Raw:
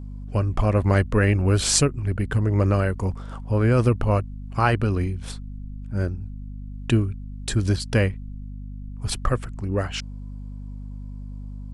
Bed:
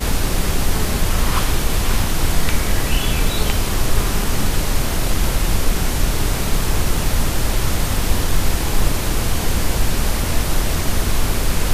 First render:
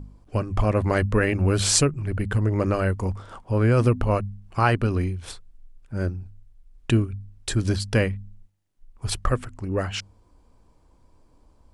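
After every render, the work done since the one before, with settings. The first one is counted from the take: de-hum 50 Hz, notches 5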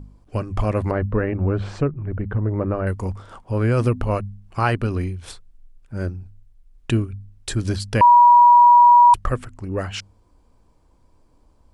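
0.91–2.87 s: low-pass 1.3 kHz; 8.01–9.14 s: bleep 964 Hz -7 dBFS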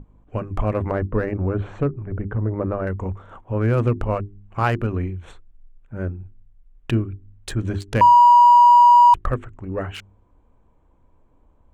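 local Wiener filter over 9 samples; hum notches 50/100/150/200/250/300/350/400 Hz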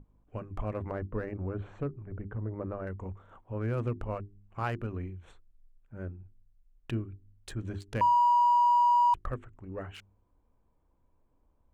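trim -12.5 dB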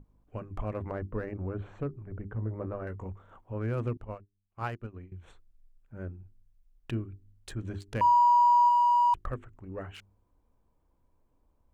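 2.34–3.04 s: doubling 18 ms -8.5 dB; 3.97–5.12 s: upward expansion 2.5:1, over -46 dBFS; 8.02–8.69 s: doubling 23 ms -7 dB

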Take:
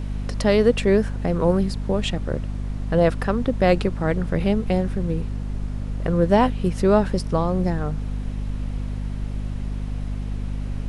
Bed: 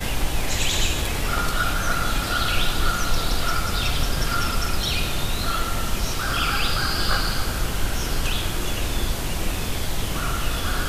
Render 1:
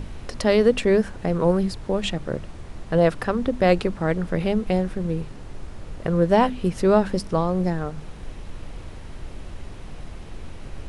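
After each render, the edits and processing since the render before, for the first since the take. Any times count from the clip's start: hum notches 50/100/150/200/250 Hz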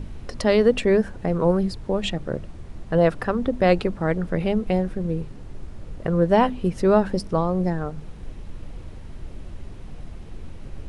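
noise reduction 6 dB, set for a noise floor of -39 dBFS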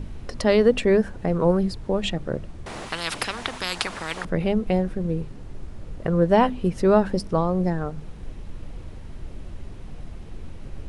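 2.66–4.25 s: spectrum-flattening compressor 10:1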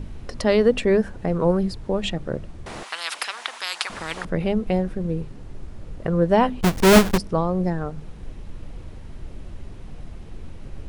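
2.83–3.90 s: high-pass 800 Hz; 6.61–7.18 s: square wave that keeps the level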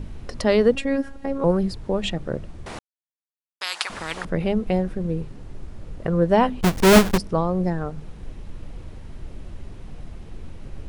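0.75–1.44 s: robot voice 274 Hz; 2.79–3.61 s: mute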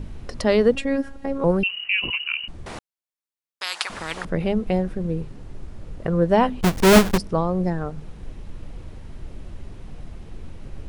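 1.63–2.48 s: frequency inversion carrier 2.9 kHz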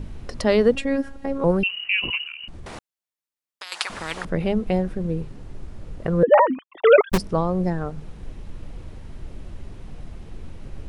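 2.25–3.72 s: compression, threshold -32 dBFS; 6.23–7.12 s: formants replaced by sine waves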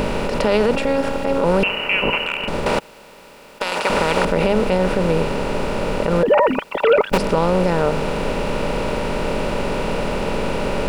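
spectral levelling over time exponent 0.4; peak limiter -6.5 dBFS, peak gain reduction 8.5 dB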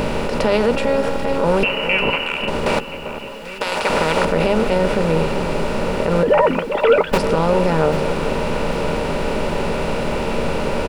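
doubling 13 ms -11 dB; echo whose repeats swap between lows and highs 395 ms, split 1.4 kHz, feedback 76%, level -10.5 dB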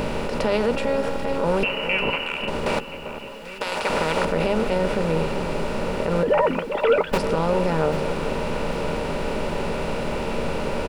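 trim -5 dB

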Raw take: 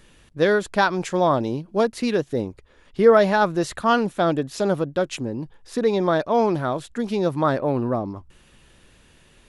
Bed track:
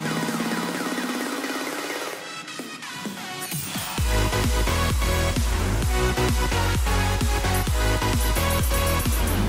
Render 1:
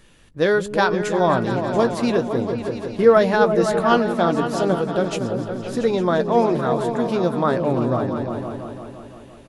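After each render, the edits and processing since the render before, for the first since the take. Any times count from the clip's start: doubling 17 ms -12.5 dB; delay with an opening low-pass 171 ms, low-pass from 200 Hz, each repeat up 2 oct, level -3 dB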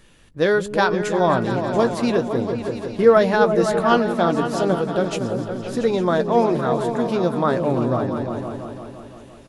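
feedback echo behind a high-pass 811 ms, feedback 77%, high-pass 5.1 kHz, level -19 dB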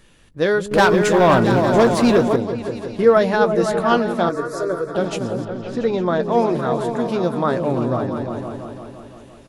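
0.71–2.36 s: waveshaping leveller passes 2; 4.29–4.95 s: static phaser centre 800 Hz, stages 6; 5.45–6.23 s: distance through air 100 m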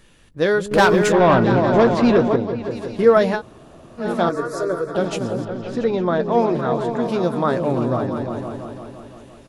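1.12–2.71 s: distance through air 140 m; 3.37–4.02 s: room tone, crossfade 0.10 s; 5.84–7.03 s: distance through air 70 m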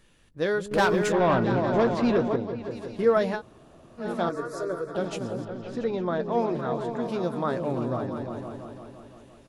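trim -8 dB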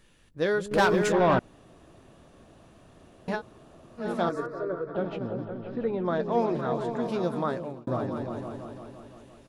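1.39–3.28 s: room tone; 4.46–6.05 s: distance through air 380 m; 7.40–7.87 s: fade out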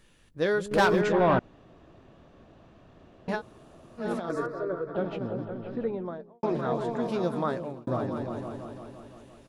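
1.01–3.29 s: distance through air 140 m; 4.11–4.52 s: compressor with a negative ratio -29 dBFS, ratio -0.5; 5.67–6.43 s: studio fade out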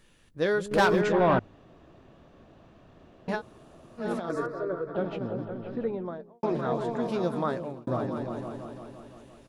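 hum notches 50/100 Hz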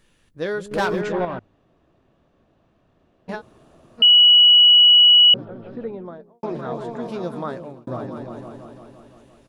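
1.25–3.29 s: gain -7.5 dB; 4.02–5.34 s: bleep 2.93 kHz -8 dBFS

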